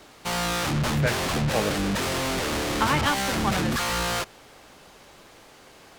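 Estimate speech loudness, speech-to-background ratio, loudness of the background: -30.0 LUFS, -4.0 dB, -26.0 LUFS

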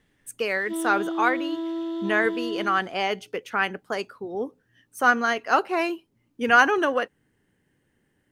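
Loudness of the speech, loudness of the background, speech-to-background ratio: -24.5 LUFS, -30.5 LUFS, 6.0 dB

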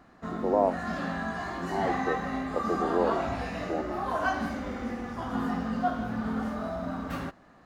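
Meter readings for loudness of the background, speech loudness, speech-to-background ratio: -32.5 LUFS, -32.0 LUFS, 0.5 dB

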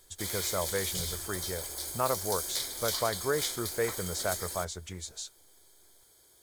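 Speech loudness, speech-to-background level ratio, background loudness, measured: -35.0 LUFS, -1.0 dB, -34.0 LUFS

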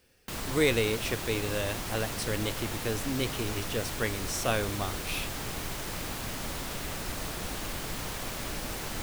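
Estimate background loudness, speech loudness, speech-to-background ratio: -35.5 LUFS, -32.0 LUFS, 3.5 dB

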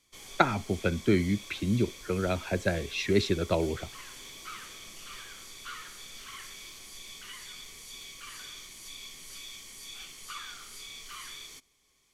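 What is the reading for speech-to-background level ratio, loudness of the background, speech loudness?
14.5 dB, -43.5 LUFS, -29.0 LUFS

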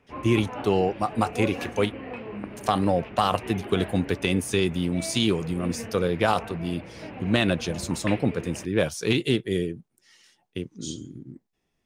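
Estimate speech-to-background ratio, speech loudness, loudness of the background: 12.0 dB, -26.0 LUFS, -38.0 LUFS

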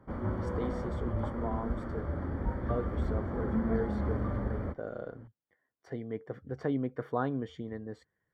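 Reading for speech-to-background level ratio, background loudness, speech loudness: -4.5 dB, -34.5 LUFS, -39.0 LUFS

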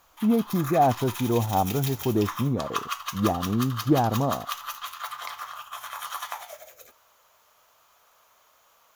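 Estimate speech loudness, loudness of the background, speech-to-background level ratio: -25.5 LUFS, -34.5 LUFS, 9.0 dB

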